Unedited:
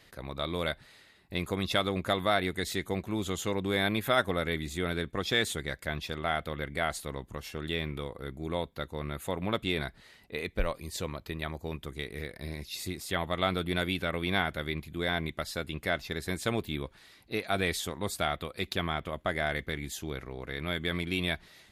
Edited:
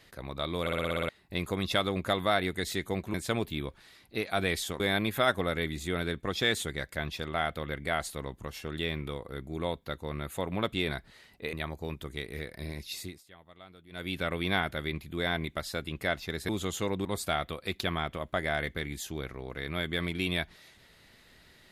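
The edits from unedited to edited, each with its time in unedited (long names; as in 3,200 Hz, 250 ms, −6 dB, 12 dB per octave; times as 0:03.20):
0:00.61: stutter in place 0.06 s, 8 plays
0:03.14–0:03.70: swap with 0:16.31–0:17.97
0:10.43–0:11.35: remove
0:12.75–0:14.03: duck −23 dB, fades 0.31 s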